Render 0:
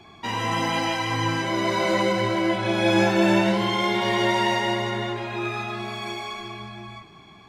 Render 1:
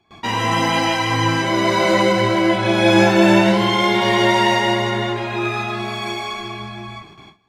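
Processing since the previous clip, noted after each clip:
noise gate with hold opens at −38 dBFS
level +6.5 dB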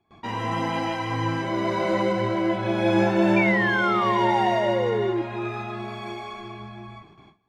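high-shelf EQ 2,300 Hz −11.5 dB
sound drawn into the spectrogram fall, 0:03.36–0:05.22, 330–2,400 Hz −18 dBFS
level −6.5 dB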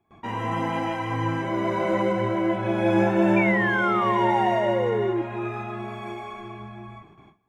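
parametric band 4,500 Hz −13 dB 0.71 octaves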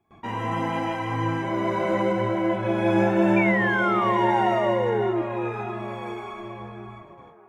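delay with a band-pass on its return 602 ms, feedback 48%, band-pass 710 Hz, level −12 dB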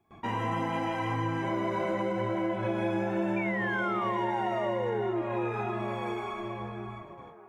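downward compressor, threshold −27 dBFS, peak gain reduction 11 dB

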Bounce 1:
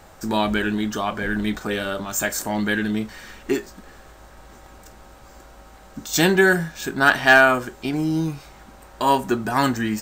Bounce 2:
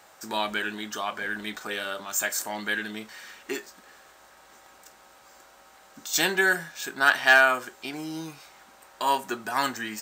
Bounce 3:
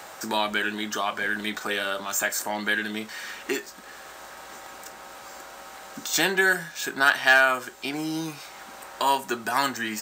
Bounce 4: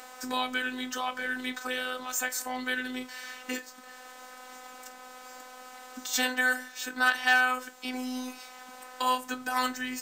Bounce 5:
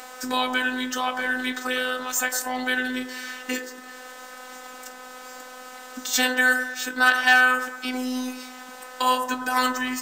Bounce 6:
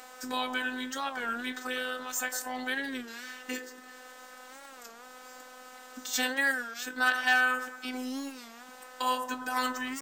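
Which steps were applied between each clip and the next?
high-pass filter 1,000 Hz 6 dB per octave; level −2 dB
multiband upward and downward compressor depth 40%; level +3 dB
phases set to zero 253 Hz; level −2.5 dB
delay with a band-pass on its return 107 ms, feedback 56%, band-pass 710 Hz, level −6 dB; level +6 dB
wow of a warped record 33 1/3 rpm, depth 160 cents; level −8 dB

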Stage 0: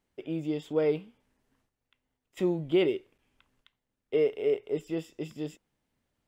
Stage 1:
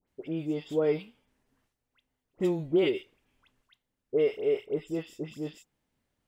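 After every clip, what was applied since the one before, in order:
all-pass dispersion highs, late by 79 ms, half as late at 1,600 Hz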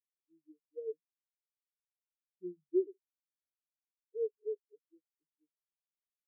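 tuned comb filter 180 Hz, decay 0.76 s, harmonics odd, mix 60%
every bin expanded away from the loudest bin 4 to 1
level +2 dB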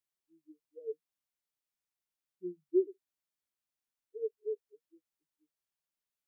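notch filter 470 Hz, Q 12
level +2.5 dB

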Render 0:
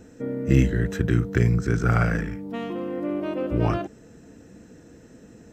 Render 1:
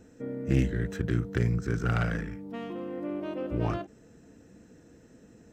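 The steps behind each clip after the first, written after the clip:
phase distortion by the signal itself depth 0.17 ms
every ending faded ahead of time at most 280 dB per second
level −6.5 dB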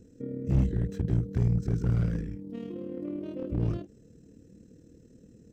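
drawn EQ curve 120 Hz 0 dB, 510 Hz −5 dB, 730 Hz −19 dB, 1,600 Hz −17 dB, 4,500 Hz −7 dB
amplitude modulation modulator 38 Hz, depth 35%
slew-rate limiting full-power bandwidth 8.8 Hz
level +5 dB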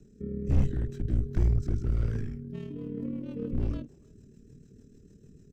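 far-end echo of a speakerphone 310 ms, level −26 dB
rotating-speaker cabinet horn 1.2 Hz, later 6.7 Hz, at 0:02.14
frequency shifter −58 Hz
level +2 dB

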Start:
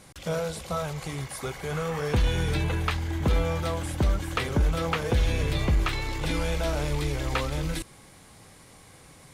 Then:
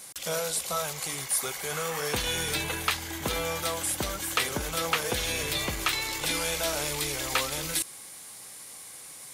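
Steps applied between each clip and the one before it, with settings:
RIAA equalisation recording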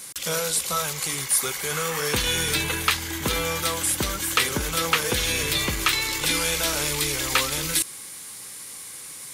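parametric band 690 Hz −8.5 dB 0.61 octaves
level +6 dB

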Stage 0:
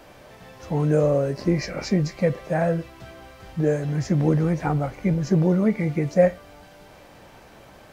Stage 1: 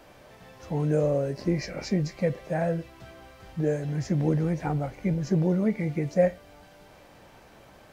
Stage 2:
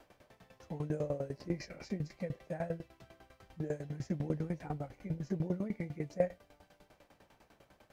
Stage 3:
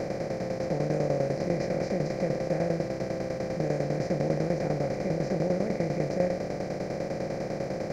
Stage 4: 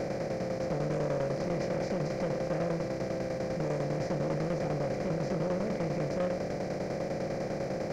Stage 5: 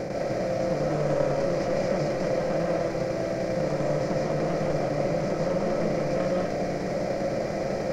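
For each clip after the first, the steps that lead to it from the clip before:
dynamic equaliser 1,200 Hz, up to −5 dB, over −47 dBFS, Q 2.9; level −4.5 dB
tremolo with a ramp in dB decaying 10 Hz, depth 18 dB; level −5.5 dB
compressor on every frequency bin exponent 0.2
soft clipping −25.5 dBFS, distortion −11 dB
convolution reverb RT60 0.45 s, pre-delay 110 ms, DRR −2 dB; level +2 dB

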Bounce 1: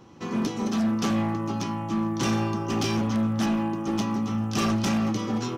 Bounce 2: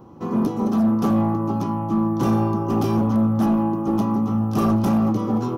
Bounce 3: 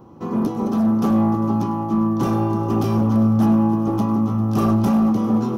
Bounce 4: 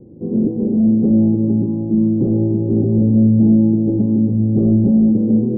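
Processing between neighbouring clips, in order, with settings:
flat-topped bell 3,700 Hz −15 dB 2.7 octaves; level +6 dB
echo machine with several playback heads 100 ms, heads first and third, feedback 68%, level −16.5 dB
Butterworth low-pass 520 Hz 36 dB per octave; level +4.5 dB

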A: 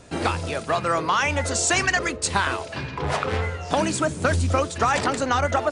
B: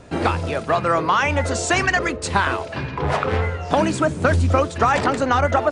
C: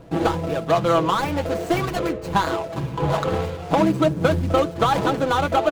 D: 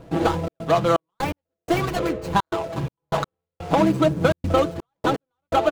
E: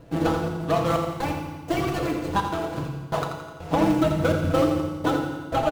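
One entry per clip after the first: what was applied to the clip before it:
high-shelf EQ 3,800 Hz −11 dB; level +4.5 dB
running median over 25 samples; comb filter 6.1 ms, depth 57%
gate pattern "xxxx.xxx..x...xx" 125 BPM −60 dB
in parallel at −12 dB: sample-and-hold swept by an LFO 37×, swing 160% 0.57 Hz; on the sum: repeating echo 85 ms, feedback 51%, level −8.5 dB; feedback delay network reverb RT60 1.5 s, low-frequency decay 1.35×, high-frequency decay 0.95×, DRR 3 dB; level −5.5 dB

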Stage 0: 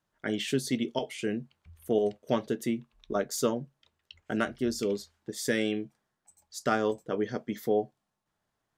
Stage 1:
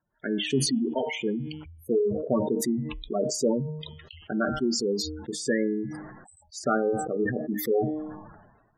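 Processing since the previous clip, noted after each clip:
gate on every frequency bin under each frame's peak −10 dB strong
hum removal 153.8 Hz, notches 22
level that may fall only so fast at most 49 dB per second
level +3 dB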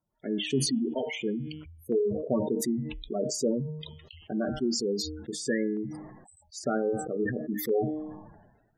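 auto-filter notch saw down 0.52 Hz 750–1,700 Hz
level −2 dB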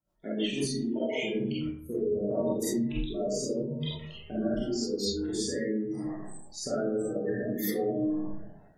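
downward compressor, threshold −32 dBFS, peak gain reduction 10.5 dB
comb and all-pass reverb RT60 0.74 s, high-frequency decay 0.4×, pre-delay 5 ms, DRR −9.5 dB
rotating-speaker cabinet horn 6.3 Hz, later 0.8 Hz, at 0:00.34
level −2.5 dB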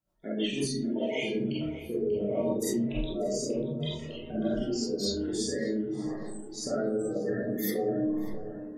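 tape delay 591 ms, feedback 62%, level −11.5 dB, low-pass 2,200 Hz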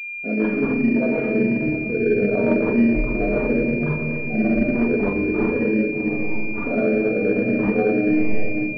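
rectangular room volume 3,800 cubic metres, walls mixed, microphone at 1.8 metres
switching amplifier with a slow clock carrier 2,400 Hz
level +7.5 dB

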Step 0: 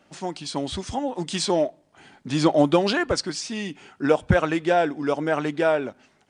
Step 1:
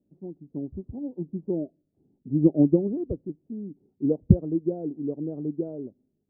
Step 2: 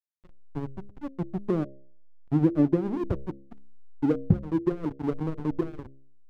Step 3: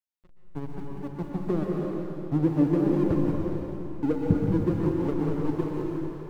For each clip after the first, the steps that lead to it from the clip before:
inverse Chebyshev low-pass filter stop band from 2,300 Hz, stop band 80 dB; expander for the loud parts 1.5 to 1, over −41 dBFS; level +4.5 dB
slack as between gear wheels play −24.5 dBFS; downward compressor 2.5 to 1, threshold −27 dBFS, peak gain reduction 12 dB; hum removal 67.63 Hz, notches 9; level +6 dB
in parallel at −11.5 dB: centre clipping without the shift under −36.5 dBFS; on the sum: dense smooth reverb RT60 3.4 s, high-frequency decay 0.95×, pre-delay 110 ms, DRR −2 dB; level −4 dB

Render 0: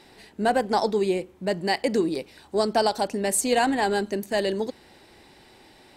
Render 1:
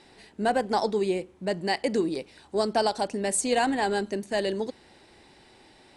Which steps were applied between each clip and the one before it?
Butterworth low-pass 11,000 Hz 96 dB per octave
level −2.5 dB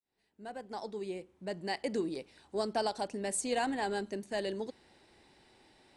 fade in at the beginning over 1.92 s
level −8 dB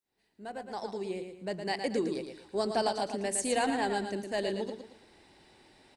repeating echo 113 ms, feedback 34%, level −7 dB
level +2.5 dB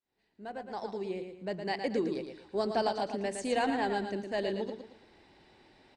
high-frequency loss of the air 100 metres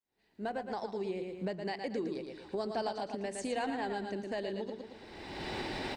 camcorder AGC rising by 31 dB per second
level −5.5 dB

